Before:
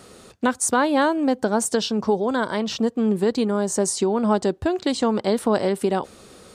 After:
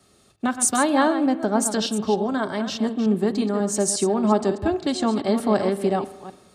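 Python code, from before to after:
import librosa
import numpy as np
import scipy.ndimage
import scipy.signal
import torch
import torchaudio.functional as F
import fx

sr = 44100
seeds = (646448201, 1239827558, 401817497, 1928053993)

y = fx.reverse_delay(x, sr, ms=180, wet_db=-9.0)
y = fx.notch_comb(y, sr, f0_hz=490.0)
y = fx.rev_spring(y, sr, rt60_s=1.5, pass_ms=(38,), chirp_ms=20, drr_db=15.0)
y = fx.band_widen(y, sr, depth_pct=40)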